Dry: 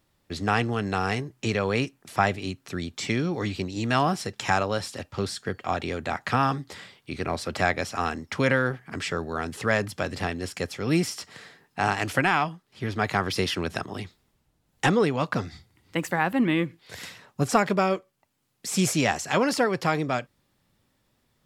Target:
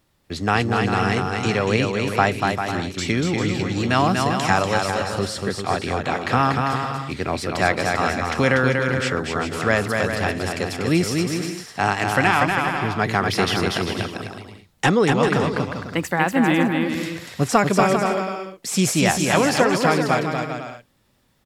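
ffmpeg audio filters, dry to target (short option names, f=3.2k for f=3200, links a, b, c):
-af "aecho=1:1:240|396|497.4|563.3|606.2:0.631|0.398|0.251|0.158|0.1,volume=4dB"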